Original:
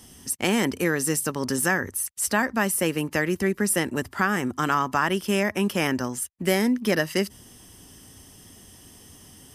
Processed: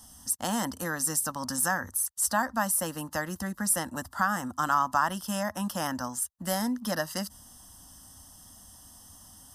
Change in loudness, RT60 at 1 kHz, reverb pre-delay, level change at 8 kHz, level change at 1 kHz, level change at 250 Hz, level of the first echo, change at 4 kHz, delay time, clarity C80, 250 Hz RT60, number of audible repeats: -4.5 dB, no reverb, no reverb, -0.5 dB, -1.0 dB, -8.0 dB, no echo, -6.0 dB, no echo, no reverb, no reverb, no echo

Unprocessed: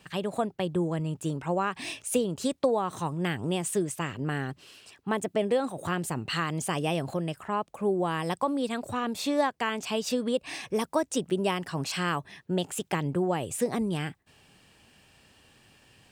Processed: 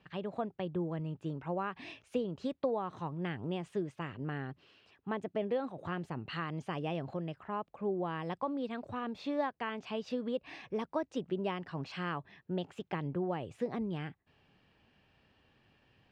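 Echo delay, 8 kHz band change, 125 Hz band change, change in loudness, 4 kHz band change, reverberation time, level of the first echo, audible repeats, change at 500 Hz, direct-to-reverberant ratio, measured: no echo, under -25 dB, -7.0 dB, -8.0 dB, -12.5 dB, no reverb, no echo, no echo, -7.5 dB, no reverb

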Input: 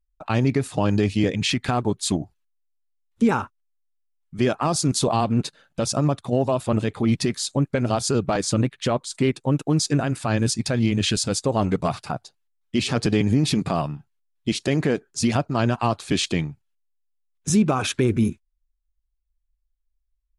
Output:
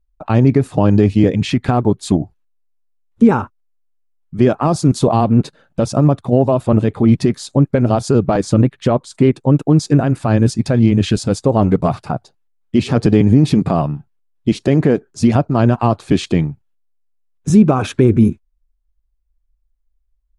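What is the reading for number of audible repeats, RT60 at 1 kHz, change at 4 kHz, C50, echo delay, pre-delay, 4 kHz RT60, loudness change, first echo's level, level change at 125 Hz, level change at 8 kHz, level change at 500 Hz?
no echo, no reverb, -2.5 dB, no reverb, no echo, no reverb, no reverb, +8.0 dB, no echo, +9.5 dB, -4.0 dB, +8.0 dB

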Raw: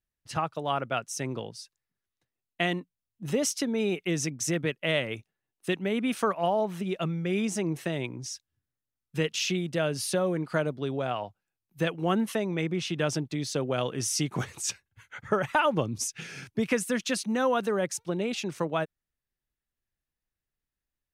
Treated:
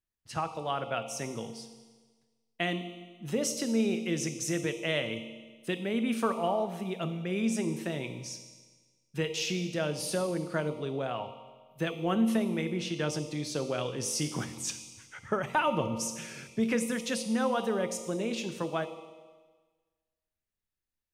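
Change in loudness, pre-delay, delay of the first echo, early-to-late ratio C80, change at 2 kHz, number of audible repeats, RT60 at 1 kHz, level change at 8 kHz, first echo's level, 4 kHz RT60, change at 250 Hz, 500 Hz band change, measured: -2.5 dB, 4 ms, no echo, 11.0 dB, -3.5 dB, no echo, 1.4 s, -3.0 dB, no echo, 1.4 s, -1.0 dB, -3.0 dB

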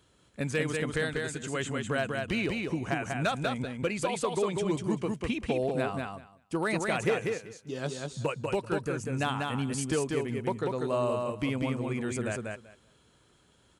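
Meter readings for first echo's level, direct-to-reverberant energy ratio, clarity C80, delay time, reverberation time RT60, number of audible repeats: -3.5 dB, no reverb, no reverb, 193 ms, no reverb, 2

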